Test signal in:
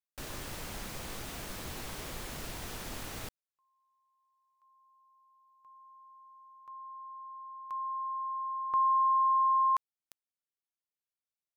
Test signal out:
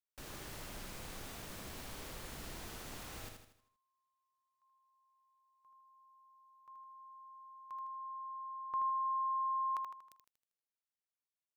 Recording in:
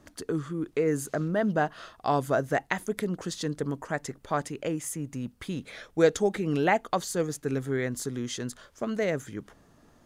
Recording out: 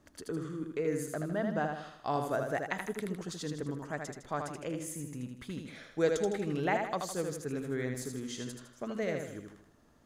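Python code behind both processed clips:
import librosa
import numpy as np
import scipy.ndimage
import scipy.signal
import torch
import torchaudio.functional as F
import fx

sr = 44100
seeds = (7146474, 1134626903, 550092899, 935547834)

y = fx.echo_feedback(x, sr, ms=79, feedback_pct=45, wet_db=-5)
y = y * librosa.db_to_amplitude(-7.5)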